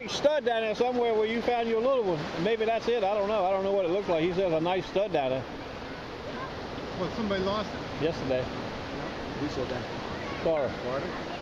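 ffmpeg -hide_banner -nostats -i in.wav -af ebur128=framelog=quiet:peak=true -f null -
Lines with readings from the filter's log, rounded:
Integrated loudness:
  I:         -29.3 LUFS
  Threshold: -39.3 LUFS
Loudness range:
  LRA:         5.3 LU
  Threshold: -49.5 LUFS
  LRA low:   -32.4 LUFS
  LRA high:  -27.2 LUFS
True peak:
  Peak:      -11.4 dBFS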